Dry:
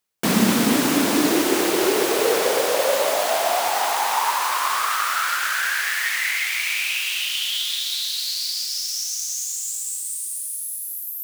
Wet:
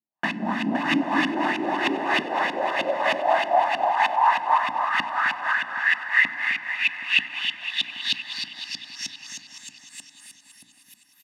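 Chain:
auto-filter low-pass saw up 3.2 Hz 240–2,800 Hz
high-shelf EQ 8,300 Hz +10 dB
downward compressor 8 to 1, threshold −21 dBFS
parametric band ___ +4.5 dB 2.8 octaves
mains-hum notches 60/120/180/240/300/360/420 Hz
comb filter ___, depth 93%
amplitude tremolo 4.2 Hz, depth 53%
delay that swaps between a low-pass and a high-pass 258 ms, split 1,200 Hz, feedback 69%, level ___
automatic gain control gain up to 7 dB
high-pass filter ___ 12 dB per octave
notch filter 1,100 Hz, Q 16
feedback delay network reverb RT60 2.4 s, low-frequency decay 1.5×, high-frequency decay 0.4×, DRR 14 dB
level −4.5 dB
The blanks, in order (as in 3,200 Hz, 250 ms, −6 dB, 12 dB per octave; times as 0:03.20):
3,100 Hz, 1.1 ms, −9 dB, 190 Hz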